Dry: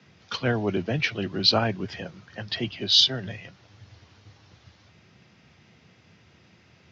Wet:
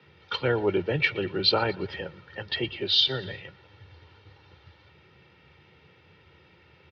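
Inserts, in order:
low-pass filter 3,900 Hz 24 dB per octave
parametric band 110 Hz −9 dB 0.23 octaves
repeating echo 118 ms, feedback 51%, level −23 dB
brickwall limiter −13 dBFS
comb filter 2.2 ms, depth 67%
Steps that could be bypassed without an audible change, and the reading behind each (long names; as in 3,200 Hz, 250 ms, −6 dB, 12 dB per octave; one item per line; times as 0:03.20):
all steps act on this source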